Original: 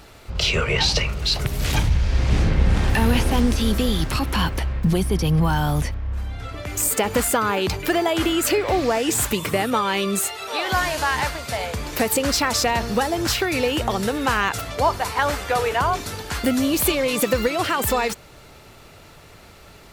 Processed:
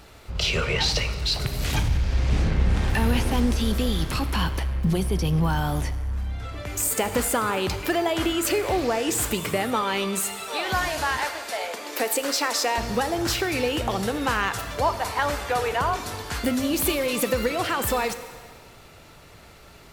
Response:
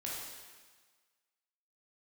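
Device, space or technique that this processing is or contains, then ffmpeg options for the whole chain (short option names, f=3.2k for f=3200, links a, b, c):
saturated reverb return: -filter_complex "[0:a]asettb=1/sr,asplit=3[a][b][c];[a]atrim=end=11.174[d];[b]atrim=start=11.17:end=12.78,asetpts=PTS-STARTPTS,afade=t=in:d=0.004:c=qsin,afade=t=out:st=1.606:d=0.004:c=qsin,highpass=f=300:w=0.5412,highpass=f=300:w=1.3066[e];[c]atrim=start=12.776[f];[d][e]acrossfade=d=0.004:c1=hsin:c2=qsin[g];[g][f]acrossfade=d=0.004:c1=qsin:c2=hsin,asplit=2[h][i];[1:a]atrim=start_sample=2205[j];[i][j]afir=irnorm=-1:irlink=0,asoftclip=type=tanh:threshold=-19.5dB,volume=-6dB[k];[h][k]amix=inputs=2:normalize=0,volume=-5dB"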